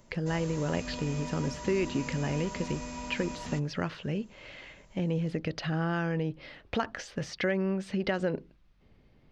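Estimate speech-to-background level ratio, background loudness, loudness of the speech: 8.0 dB, -40.5 LUFS, -32.5 LUFS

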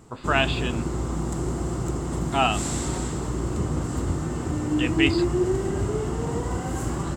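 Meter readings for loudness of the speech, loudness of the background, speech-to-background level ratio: -26.0 LUFS, -27.0 LUFS, 1.0 dB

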